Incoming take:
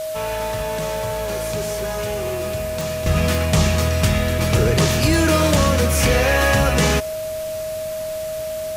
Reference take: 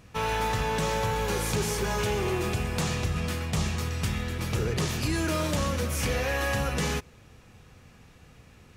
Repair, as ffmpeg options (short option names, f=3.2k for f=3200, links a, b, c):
-af "adeclick=t=4,bandreject=f=630:w=30,afwtdn=0.014,asetnsamples=n=441:p=0,asendcmd='3.06 volume volume -11dB',volume=0dB"